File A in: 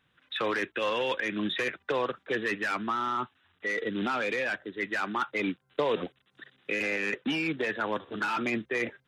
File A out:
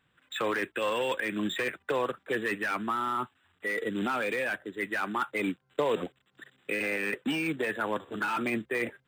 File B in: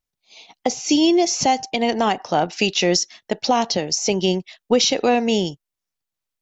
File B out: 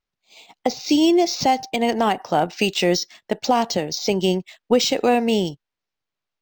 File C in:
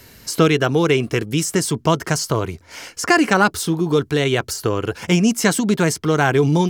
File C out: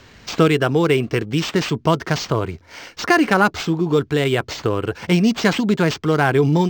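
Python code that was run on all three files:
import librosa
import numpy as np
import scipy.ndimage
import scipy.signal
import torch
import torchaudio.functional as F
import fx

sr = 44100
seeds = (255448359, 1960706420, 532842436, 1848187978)

y = np.interp(np.arange(len(x)), np.arange(len(x))[::4], x[::4])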